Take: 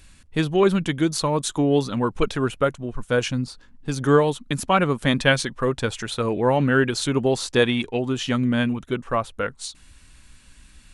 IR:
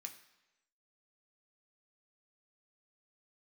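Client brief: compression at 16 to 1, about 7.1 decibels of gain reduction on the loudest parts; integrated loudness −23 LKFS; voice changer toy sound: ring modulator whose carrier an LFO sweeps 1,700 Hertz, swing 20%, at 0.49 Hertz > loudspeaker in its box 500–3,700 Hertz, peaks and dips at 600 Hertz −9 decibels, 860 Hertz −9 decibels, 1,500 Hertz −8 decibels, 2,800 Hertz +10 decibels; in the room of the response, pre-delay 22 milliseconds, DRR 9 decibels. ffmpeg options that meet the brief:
-filter_complex "[0:a]acompressor=threshold=-19dB:ratio=16,asplit=2[link_01][link_02];[1:a]atrim=start_sample=2205,adelay=22[link_03];[link_02][link_03]afir=irnorm=-1:irlink=0,volume=-4dB[link_04];[link_01][link_04]amix=inputs=2:normalize=0,aeval=exprs='val(0)*sin(2*PI*1700*n/s+1700*0.2/0.49*sin(2*PI*0.49*n/s))':channel_layout=same,highpass=500,equalizer=frequency=600:width_type=q:width=4:gain=-9,equalizer=frequency=860:width_type=q:width=4:gain=-9,equalizer=frequency=1500:width_type=q:width=4:gain=-8,equalizer=frequency=2800:width_type=q:width=4:gain=10,lowpass=frequency=3700:width=0.5412,lowpass=frequency=3700:width=1.3066,volume=4dB"

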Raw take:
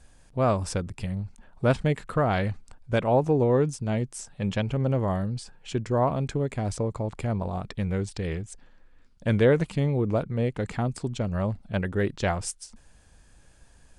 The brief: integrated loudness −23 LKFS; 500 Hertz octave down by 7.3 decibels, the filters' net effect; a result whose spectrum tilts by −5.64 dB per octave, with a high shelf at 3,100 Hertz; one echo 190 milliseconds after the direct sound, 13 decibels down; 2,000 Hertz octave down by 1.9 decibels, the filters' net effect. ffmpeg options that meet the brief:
ffmpeg -i in.wav -af "equalizer=frequency=500:width_type=o:gain=-9,equalizer=frequency=2000:width_type=o:gain=-4,highshelf=frequency=3100:gain=6.5,aecho=1:1:190:0.224,volume=6.5dB" out.wav

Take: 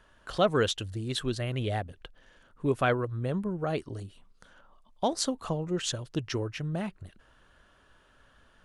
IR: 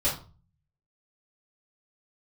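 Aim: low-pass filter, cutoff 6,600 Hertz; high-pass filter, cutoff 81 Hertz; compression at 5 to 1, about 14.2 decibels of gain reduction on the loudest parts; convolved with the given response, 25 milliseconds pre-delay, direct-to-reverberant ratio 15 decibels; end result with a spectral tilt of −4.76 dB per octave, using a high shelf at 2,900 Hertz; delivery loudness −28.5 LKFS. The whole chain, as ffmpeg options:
-filter_complex "[0:a]highpass=81,lowpass=6600,highshelf=frequency=2900:gain=5.5,acompressor=threshold=-36dB:ratio=5,asplit=2[link_01][link_02];[1:a]atrim=start_sample=2205,adelay=25[link_03];[link_02][link_03]afir=irnorm=-1:irlink=0,volume=-25dB[link_04];[link_01][link_04]amix=inputs=2:normalize=0,volume=11.5dB"

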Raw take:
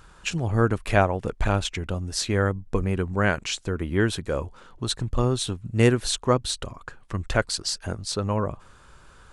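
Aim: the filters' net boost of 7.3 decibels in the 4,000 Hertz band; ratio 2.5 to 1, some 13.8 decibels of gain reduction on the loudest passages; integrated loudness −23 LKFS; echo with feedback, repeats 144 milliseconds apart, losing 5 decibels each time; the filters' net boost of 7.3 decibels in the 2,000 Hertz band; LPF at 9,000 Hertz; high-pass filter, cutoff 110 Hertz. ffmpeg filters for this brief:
ffmpeg -i in.wav -af "highpass=110,lowpass=9000,equalizer=frequency=2000:width_type=o:gain=8.5,equalizer=frequency=4000:width_type=o:gain=6.5,acompressor=threshold=-34dB:ratio=2.5,aecho=1:1:144|288|432|576|720|864|1008:0.562|0.315|0.176|0.0988|0.0553|0.031|0.0173,volume=9dB" out.wav

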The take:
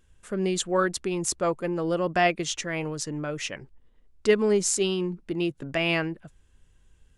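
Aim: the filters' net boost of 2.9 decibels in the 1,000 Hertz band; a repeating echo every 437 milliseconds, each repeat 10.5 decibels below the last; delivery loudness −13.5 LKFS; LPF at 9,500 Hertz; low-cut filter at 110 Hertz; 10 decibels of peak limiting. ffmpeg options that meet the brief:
ffmpeg -i in.wav -af "highpass=110,lowpass=9500,equalizer=frequency=1000:width_type=o:gain=4.5,alimiter=limit=-17dB:level=0:latency=1,aecho=1:1:437|874|1311:0.299|0.0896|0.0269,volume=15dB" out.wav

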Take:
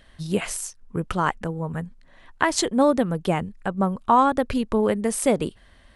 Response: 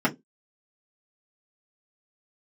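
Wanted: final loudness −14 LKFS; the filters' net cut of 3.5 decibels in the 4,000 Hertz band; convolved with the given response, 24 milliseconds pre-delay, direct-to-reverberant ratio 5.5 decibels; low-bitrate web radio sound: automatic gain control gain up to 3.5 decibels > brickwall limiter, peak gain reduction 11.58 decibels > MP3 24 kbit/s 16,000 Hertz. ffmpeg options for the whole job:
-filter_complex "[0:a]equalizer=frequency=4000:width_type=o:gain=-4.5,asplit=2[link_01][link_02];[1:a]atrim=start_sample=2205,adelay=24[link_03];[link_02][link_03]afir=irnorm=-1:irlink=0,volume=-19.5dB[link_04];[link_01][link_04]amix=inputs=2:normalize=0,dynaudnorm=maxgain=3.5dB,alimiter=limit=-16dB:level=0:latency=1,volume=13dB" -ar 16000 -c:a libmp3lame -b:a 24k

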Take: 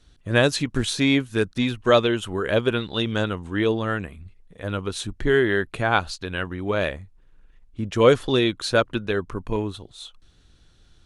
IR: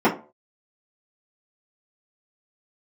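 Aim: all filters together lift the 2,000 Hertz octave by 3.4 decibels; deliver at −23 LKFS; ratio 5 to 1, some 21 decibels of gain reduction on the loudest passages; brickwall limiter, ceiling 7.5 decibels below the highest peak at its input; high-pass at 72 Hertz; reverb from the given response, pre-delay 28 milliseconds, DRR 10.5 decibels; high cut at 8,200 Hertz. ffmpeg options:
-filter_complex "[0:a]highpass=72,lowpass=8200,equalizer=frequency=2000:width_type=o:gain=4.5,acompressor=threshold=-35dB:ratio=5,alimiter=level_in=4dB:limit=-24dB:level=0:latency=1,volume=-4dB,asplit=2[link_01][link_02];[1:a]atrim=start_sample=2205,adelay=28[link_03];[link_02][link_03]afir=irnorm=-1:irlink=0,volume=-30.5dB[link_04];[link_01][link_04]amix=inputs=2:normalize=0,volume=16dB"

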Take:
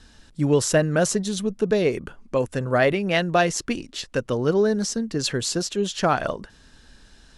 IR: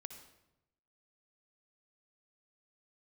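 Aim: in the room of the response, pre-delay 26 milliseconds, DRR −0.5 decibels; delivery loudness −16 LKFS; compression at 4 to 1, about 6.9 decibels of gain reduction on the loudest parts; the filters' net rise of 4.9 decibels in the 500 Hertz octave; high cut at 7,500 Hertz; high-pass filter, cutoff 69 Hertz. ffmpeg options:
-filter_complex "[0:a]highpass=69,lowpass=7500,equalizer=frequency=500:width_type=o:gain=6,acompressor=threshold=-19dB:ratio=4,asplit=2[link_01][link_02];[1:a]atrim=start_sample=2205,adelay=26[link_03];[link_02][link_03]afir=irnorm=-1:irlink=0,volume=5dB[link_04];[link_01][link_04]amix=inputs=2:normalize=0,volume=5.5dB"

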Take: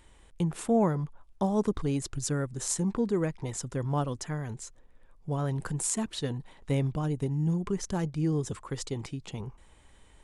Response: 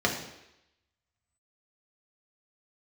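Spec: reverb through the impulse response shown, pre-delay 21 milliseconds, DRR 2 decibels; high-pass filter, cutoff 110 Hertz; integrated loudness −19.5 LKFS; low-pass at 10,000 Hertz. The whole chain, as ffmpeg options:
-filter_complex "[0:a]highpass=110,lowpass=10000,asplit=2[link_01][link_02];[1:a]atrim=start_sample=2205,adelay=21[link_03];[link_02][link_03]afir=irnorm=-1:irlink=0,volume=-14.5dB[link_04];[link_01][link_04]amix=inputs=2:normalize=0,volume=9.5dB"

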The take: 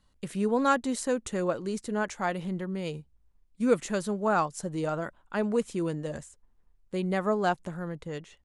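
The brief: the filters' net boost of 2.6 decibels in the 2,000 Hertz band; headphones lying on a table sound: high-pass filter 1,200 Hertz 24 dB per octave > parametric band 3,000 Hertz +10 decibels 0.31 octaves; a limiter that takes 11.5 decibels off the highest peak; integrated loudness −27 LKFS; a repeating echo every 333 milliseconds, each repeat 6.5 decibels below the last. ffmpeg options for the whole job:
ffmpeg -i in.wav -af "equalizer=frequency=2000:width_type=o:gain=3.5,alimiter=limit=-21.5dB:level=0:latency=1,highpass=frequency=1200:width=0.5412,highpass=frequency=1200:width=1.3066,equalizer=frequency=3000:width_type=o:width=0.31:gain=10,aecho=1:1:333|666|999|1332|1665|1998:0.473|0.222|0.105|0.0491|0.0231|0.0109,volume=12dB" out.wav

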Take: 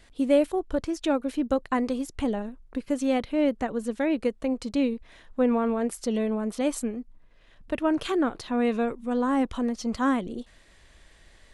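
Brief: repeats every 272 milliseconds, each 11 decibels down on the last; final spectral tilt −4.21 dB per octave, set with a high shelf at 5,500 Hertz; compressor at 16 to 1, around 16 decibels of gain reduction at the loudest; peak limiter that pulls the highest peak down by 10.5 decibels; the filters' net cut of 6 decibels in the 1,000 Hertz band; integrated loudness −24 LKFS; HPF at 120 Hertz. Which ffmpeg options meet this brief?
ffmpeg -i in.wav -af "highpass=120,equalizer=frequency=1000:width_type=o:gain=-8.5,highshelf=frequency=5500:gain=5.5,acompressor=threshold=-33dB:ratio=16,alimiter=level_in=6.5dB:limit=-24dB:level=0:latency=1,volume=-6.5dB,aecho=1:1:272|544|816:0.282|0.0789|0.0221,volume=15dB" out.wav

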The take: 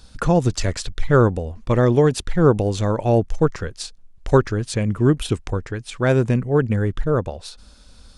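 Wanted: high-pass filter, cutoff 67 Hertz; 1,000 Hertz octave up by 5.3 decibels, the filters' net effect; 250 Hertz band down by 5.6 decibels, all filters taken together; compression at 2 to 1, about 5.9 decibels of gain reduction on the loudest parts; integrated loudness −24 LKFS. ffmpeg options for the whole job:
ffmpeg -i in.wav -af "highpass=67,equalizer=frequency=250:width_type=o:gain=-9,equalizer=frequency=1000:width_type=o:gain=7.5,acompressor=threshold=-20dB:ratio=2,volume=1dB" out.wav

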